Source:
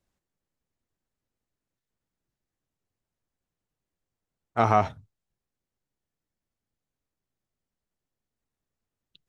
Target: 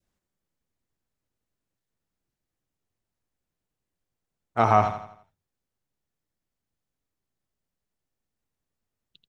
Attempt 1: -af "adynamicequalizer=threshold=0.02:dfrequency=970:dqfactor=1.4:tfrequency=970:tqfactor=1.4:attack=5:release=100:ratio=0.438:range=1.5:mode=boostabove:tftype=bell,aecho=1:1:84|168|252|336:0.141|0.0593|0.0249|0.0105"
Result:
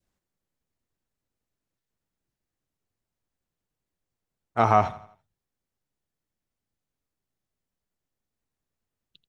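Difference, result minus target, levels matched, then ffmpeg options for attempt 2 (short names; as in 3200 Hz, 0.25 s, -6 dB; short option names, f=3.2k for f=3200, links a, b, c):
echo-to-direct -7.5 dB
-af "adynamicequalizer=threshold=0.02:dfrequency=970:dqfactor=1.4:tfrequency=970:tqfactor=1.4:attack=5:release=100:ratio=0.438:range=1.5:mode=boostabove:tftype=bell,aecho=1:1:84|168|252|336|420:0.335|0.141|0.0591|0.0248|0.0104"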